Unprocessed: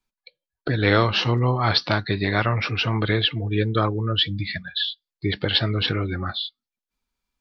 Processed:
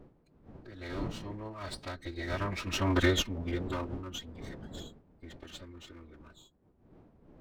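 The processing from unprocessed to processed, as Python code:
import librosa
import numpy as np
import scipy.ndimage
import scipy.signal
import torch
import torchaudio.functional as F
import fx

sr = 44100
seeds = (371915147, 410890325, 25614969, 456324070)

y = fx.lower_of_two(x, sr, delay_ms=2.7)
y = fx.doppler_pass(y, sr, speed_mps=7, closest_m=1.4, pass_at_s=3.0)
y = fx.dmg_wind(y, sr, seeds[0], corner_hz=300.0, level_db=-43.0)
y = fx.pitch_keep_formants(y, sr, semitones=-3.0)
y = y * 10.0 ** (-3.0 / 20.0)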